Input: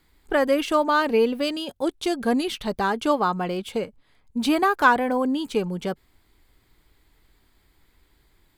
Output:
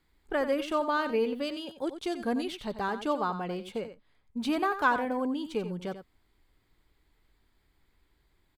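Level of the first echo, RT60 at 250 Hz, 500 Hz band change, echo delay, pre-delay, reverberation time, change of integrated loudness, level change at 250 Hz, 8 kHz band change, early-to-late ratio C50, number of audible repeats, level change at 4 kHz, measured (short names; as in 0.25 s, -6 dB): -11.0 dB, none, -7.5 dB, 90 ms, none, none, -7.5 dB, -7.5 dB, -11.5 dB, none, 1, -9.0 dB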